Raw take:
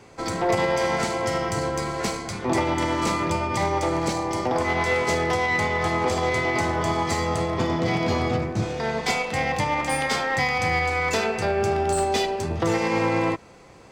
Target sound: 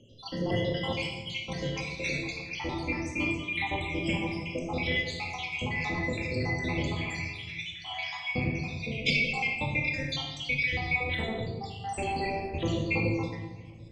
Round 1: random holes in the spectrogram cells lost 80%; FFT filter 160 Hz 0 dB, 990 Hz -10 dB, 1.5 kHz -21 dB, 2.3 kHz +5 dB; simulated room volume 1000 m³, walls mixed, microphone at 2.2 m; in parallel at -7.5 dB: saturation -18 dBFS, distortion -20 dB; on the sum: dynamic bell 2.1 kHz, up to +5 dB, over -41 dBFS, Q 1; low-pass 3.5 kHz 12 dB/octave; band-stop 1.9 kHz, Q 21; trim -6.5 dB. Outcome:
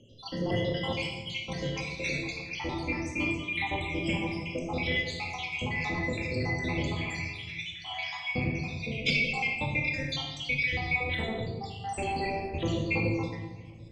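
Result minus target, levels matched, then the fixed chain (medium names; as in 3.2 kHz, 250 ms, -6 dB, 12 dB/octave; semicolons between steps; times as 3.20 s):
saturation: distortion +17 dB
random holes in the spectrogram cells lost 80%; FFT filter 160 Hz 0 dB, 990 Hz -10 dB, 1.5 kHz -21 dB, 2.3 kHz +5 dB; simulated room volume 1000 m³, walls mixed, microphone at 2.2 m; in parallel at -7.5 dB: saturation -7.5 dBFS, distortion -38 dB; on the sum: dynamic bell 2.1 kHz, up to +5 dB, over -41 dBFS, Q 1; low-pass 3.5 kHz 12 dB/octave; band-stop 1.9 kHz, Q 21; trim -6.5 dB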